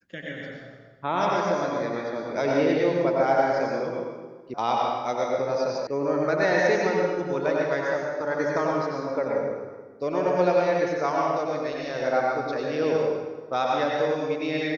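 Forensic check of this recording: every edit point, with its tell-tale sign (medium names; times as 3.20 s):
4.54 s: sound stops dead
5.87 s: sound stops dead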